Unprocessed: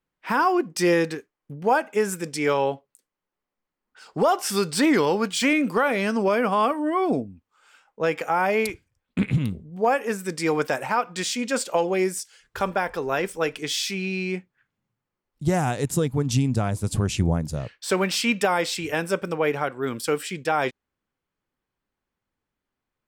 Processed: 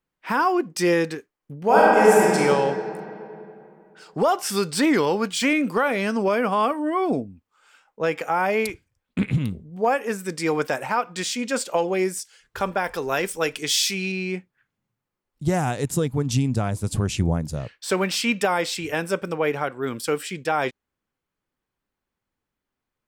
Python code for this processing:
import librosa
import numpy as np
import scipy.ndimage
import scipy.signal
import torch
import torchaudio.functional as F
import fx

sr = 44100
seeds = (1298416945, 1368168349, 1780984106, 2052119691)

y = fx.reverb_throw(x, sr, start_s=1.64, length_s=0.71, rt60_s=2.8, drr_db=-7.5)
y = fx.high_shelf(y, sr, hz=3300.0, db=8.5, at=(12.84, 14.12))